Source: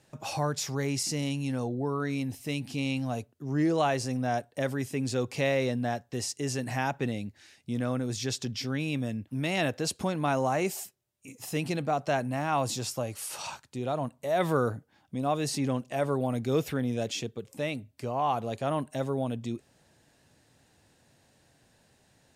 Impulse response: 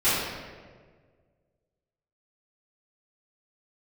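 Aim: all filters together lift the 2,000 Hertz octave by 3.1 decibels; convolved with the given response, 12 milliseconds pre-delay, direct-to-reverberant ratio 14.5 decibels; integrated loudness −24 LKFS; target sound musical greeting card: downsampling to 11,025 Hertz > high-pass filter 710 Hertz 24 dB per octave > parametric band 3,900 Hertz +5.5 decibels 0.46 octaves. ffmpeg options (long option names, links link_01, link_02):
-filter_complex "[0:a]equalizer=frequency=2000:width_type=o:gain=3.5,asplit=2[link_01][link_02];[1:a]atrim=start_sample=2205,adelay=12[link_03];[link_02][link_03]afir=irnorm=-1:irlink=0,volume=-31dB[link_04];[link_01][link_04]amix=inputs=2:normalize=0,aresample=11025,aresample=44100,highpass=frequency=710:width=0.5412,highpass=frequency=710:width=1.3066,equalizer=frequency=3900:width_type=o:width=0.46:gain=5.5,volume=10.5dB"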